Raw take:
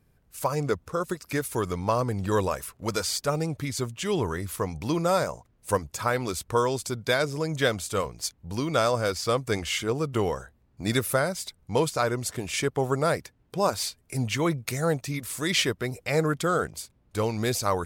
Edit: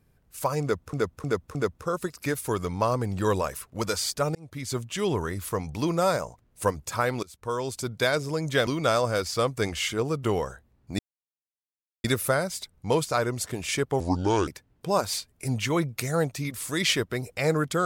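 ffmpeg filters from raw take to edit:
-filter_complex "[0:a]asplit=10[a][b][c][d][e][f][g][h][i][j];[a]atrim=end=0.932[k];[b]atrim=start=0.618:end=0.932[l];[c]atrim=start=0.618:end=0.932[m];[d]atrim=start=0.618:end=3.42,asetpts=PTS-STARTPTS,afade=t=out:st=2.798:d=0.004:c=hsin[n];[e]atrim=start=3.42:end=6.3,asetpts=PTS-STARTPTS,afade=t=in:d=0.41,afade=t=out:st=2.876:d=0.004:c=hsin:silence=0.0668344[o];[f]atrim=start=6.3:end=7.742,asetpts=PTS-STARTPTS,afade=t=in:d=0.65:silence=0.0668344[p];[g]atrim=start=8.568:end=10.89,asetpts=PTS-STARTPTS,afade=t=out:st=2.318:d=0.004:c=hsin,apad=pad_dur=1.05[q];[h]atrim=start=10.89:end=12.854,asetpts=PTS-STARTPTS,afade=t=in:d=0.004:c=hsin[r];[i]atrim=start=12.85:end=13.17,asetpts=PTS-STARTPTS,asetrate=29547,aresample=44100[s];[j]atrim=start=13.166[t];[k][l]acrossfade=d=0.004:c1=hsin:c2=hsin[u];[u][m]acrossfade=d=0.004:c1=hsin:c2=hsin[v];[n][o][p]concat=n=3:v=0:a=1[w];[v][w]acrossfade=d=0.004:c1=hsin:c2=hsin[x];[q][r]concat=n=2:v=0:a=1[y];[x][y]acrossfade=d=0.004:c1=hsin:c2=hsin[z];[z][s]acrossfade=d=0.004:c1=hsin:c2=hsin[aa];[aa][t]acrossfade=d=0.004:c1=hsin:c2=hsin"

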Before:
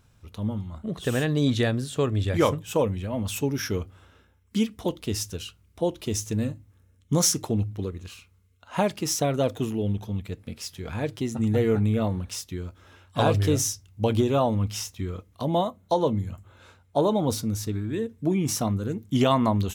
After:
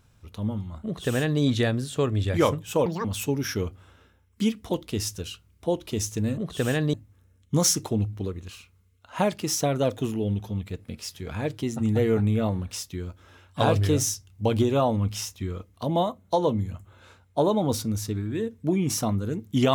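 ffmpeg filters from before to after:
-filter_complex "[0:a]asplit=5[a][b][c][d][e];[a]atrim=end=2.864[f];[b]atrim=start=2.86:end=3.19,asetpts=PTS-STARTPTS,asetrate=78498,aresample=44100[g];[c]atrim=start=3.186:end=6.522[h];[d]atrim=start=0.848:end=1.412[i];[e]atrim=start=6.518[j];[f][g]acrossfade=d=0.004:c1=hsin:c2=hsin[k];[k][h]acrossfade=d=0.004:c1=hsin:c2=hsin[l];[l][i]acrossfade=d=0.004:c1=hsin:c2=hsin[m];[m][j]acrossfade=d=0.004:c1=hsin:c2=hsin"

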